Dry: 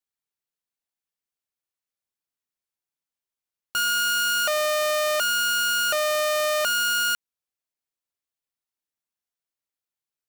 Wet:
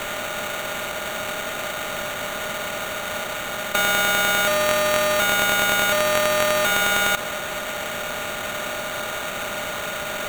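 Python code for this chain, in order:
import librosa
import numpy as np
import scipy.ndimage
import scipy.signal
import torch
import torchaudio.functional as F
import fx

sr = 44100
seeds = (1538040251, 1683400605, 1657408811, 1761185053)

p1 = fx.bin_compress(x, sr, power=0.2)
p2 = fx.over_compress(p1, sr, threshold_db=-27.0, ratio=-0.5)
p3 = p1 + F.gain(torch.from_numpy(p2), -1.0).numpy()
y = fx.sample_hold(p3, sr, seeds[0], rate_hz=5100.0, jitter_pct=0)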